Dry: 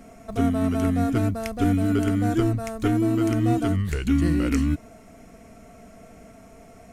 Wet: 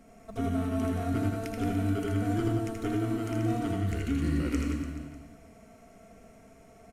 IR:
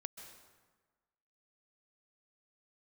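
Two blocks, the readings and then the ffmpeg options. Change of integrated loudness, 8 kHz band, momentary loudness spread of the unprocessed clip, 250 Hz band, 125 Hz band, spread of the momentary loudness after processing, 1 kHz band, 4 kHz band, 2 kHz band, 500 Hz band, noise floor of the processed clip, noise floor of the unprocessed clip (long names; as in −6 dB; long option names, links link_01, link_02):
−7.0 dB, −7.0 dB, 4 LU, −8.0 dB, −6.5 dB, 6 LU, −6.0 dB, −6.0 dB, −6.0 dB, −6.5 dB, −55 dBFS, −48 dBFS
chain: -filter_complex "[0:a]aecho=1:1:80|176|291.2|429.4|595.3:0.631|0.398|0.251|0.158|0.1[link_01];[1:a]atrim=start_sample=2205,asetrate=79380,aresample=44100[link_02];[link_01][link_02]afir=irnorm=-1:irlink=0"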